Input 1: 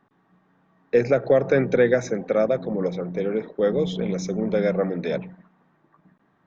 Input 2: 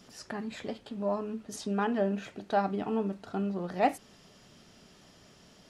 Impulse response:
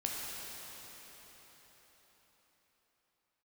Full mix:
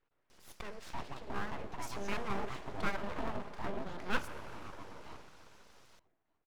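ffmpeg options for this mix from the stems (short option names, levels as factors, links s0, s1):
-filter_complex "[0:a]aecho=1:1:6.5:0.62,alimiter=limit=0.188:level=0:latency=1:release=377,volume=0.158,afade=t=out:st=3.71:d=0.3:silence=0.446684,asplit=2[s0][s1];[s1]volume=0.106[s2];[1:a]equalizer=f=1600:w=0.54:g=4,adelay=300,volume=0.355,asplit=2[s3][s4];[s4]volume=0.335[s5];[2:a]atrim=start_sample=2205[s6];[s5][s6]afir=irnorm=-1:irlink=0[s7];[s2]aecho=0:1:304|608|912|1216|1520|1824|2128|2432|2736:1|0.57|0.325|0.185|0.106|0.0602|0.0343|0.0195|0.0111[s8];[s0][s3][s7][s8]amix=inputs=4:normalize=0,aeval=exprs='abs(val(0))':c=same"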